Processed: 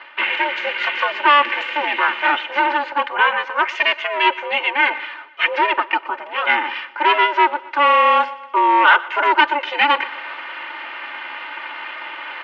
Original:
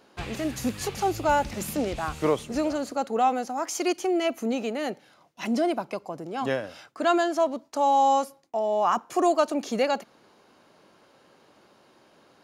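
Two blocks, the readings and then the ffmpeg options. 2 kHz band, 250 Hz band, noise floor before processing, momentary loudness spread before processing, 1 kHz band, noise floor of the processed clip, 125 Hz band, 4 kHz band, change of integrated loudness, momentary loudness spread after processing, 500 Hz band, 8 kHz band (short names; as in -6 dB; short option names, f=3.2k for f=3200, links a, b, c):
+20.5 dB, -4.0 dB, -60 dBFS, 9 LU, +10.0 dB, -38 dBFS, under -25 dB, +15.0 dB, +9.5 dB, 16 LU, +0.5 dB, under -15 dB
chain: -filter_complex "[0:a]equalizer=f=1.8k:w=0.85:g=12,bandreject=f=1.6k:w=5.3,aecho=1:1:3.3:0.82,areverse,acompressor=mode=upward:threshold=-24dB:ratio=2.5,areverse,asoftclip=type=hard:threshold=-15dB,aeval=exprs='val(0)*sin(2*PI*290*n/s)':c=same,highpass=f=390:w=0.5412,highpass=f=390:w=1.3066,equalizer=f=440:t=q:w=4:g=-5,equalizer=f=630:t=q:w=4:g=-9,equalizer=f=920:t=q:w=4:g=4,equalizer=f=1.4k:t=q:w=4:g=5,equalizer=f=2k:t=q:w=4:g=8,equalizer=f=2.9k:t=q:w=4:g=8,lowpass=f=3.2k:w=0.5412,lowpass=f=3.2k:w=1.3066,asplit=2[a][b];[b]aecho=0:1:121|242|363|484:0.1|0.054|0.0292|0.0157[c];[a][c]amix=inputs=2:normalize=0,volume=7dB"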